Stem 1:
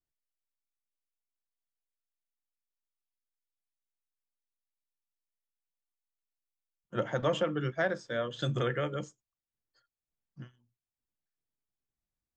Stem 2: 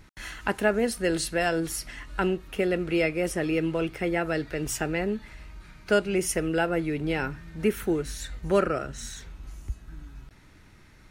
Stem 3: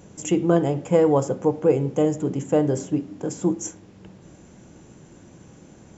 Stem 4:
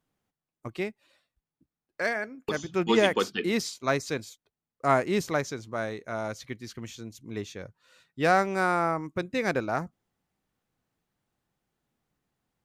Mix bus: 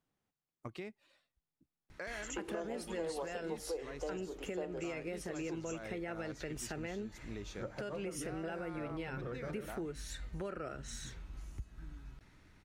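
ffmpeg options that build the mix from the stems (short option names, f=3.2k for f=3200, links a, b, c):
-filter_complex "[0:a]lowpass=1.3k,adelay=650,volume=-9dB[a];[1:a]adelay=1900,volume=-8.5dB[b];[2:a]highpass=f=390:w=0.5412,highpass=f=390:w=1.3066,adelay=2050,volume=-9dB[c];[3:a]acompressor=threshold=-30dB:ratio=6,alimiter=level_in=3dB:limit=-24dB:level=0:latency=1,volume=-3dB,volume=-5dB[d];[a][b]amix=inputs=2:normalize=0,dynaudnorm=f=150:g=13:m=3dB,alimiter=limit=-24dB:level=0:latency=1:release=73,volume=0dB[e];[c][d][e]amix=inputs=3:normalize=0,highshelf=f=12k:g=-9,acompressor=threshold=-40dB:ratio=3"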